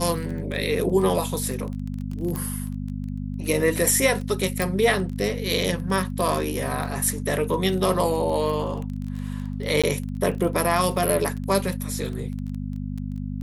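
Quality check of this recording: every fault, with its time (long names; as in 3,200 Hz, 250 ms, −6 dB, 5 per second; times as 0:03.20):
surface crackle 19 per second −30 dBFS
mains hum 50 Hz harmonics 5 −30 dBFS
0:02.36: click
0:04.62: click
0:09.82–0:09.84: drop-out 16 ms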